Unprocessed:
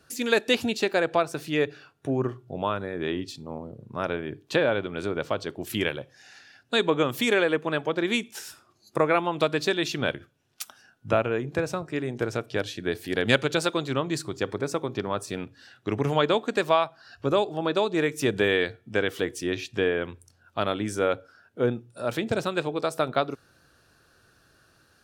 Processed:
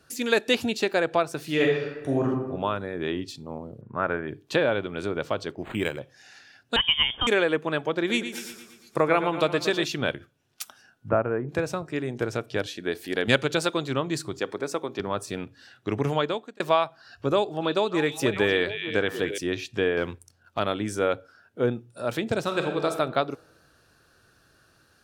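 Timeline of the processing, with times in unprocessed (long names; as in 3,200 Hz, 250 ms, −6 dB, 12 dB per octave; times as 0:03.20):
0:01.44–0:02.25: thrown reverb, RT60 1.1 s, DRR −2.5 dB
0:03.81–0:04.28: low-pass with resonance 1,600 Hz, resonance Q 1.9
0:05.52–0:06.00: linearly interpolated sample-rate reduction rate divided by 8×
0:06.76–0:07.27: voice inversion scrambler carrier 3,400 Hz
0:07.98–0:09.85: repeating echo 116 ms, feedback 57%, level −10.5 dB
0:11.09–0:11.49: low-pass filter 1,700 Hz 24 dB per octave
0:12.66–0:13.28: parametric band 110 Hz −14 dB
0:14.39–0:15.00: Bessel high-pass filter 260 Hz
0:16.07–0:16.60: fade out
0:17.30–0:19.38: echo through a band-pass that steps 299 ms, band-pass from 2,900 Hz, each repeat −1.4 octaves, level −4 dB
0:19.97–0:20.59: leveller curve on the samples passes 1
0:22.41–0:22.86: thrown reverb, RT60 1.2 s, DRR 4 dB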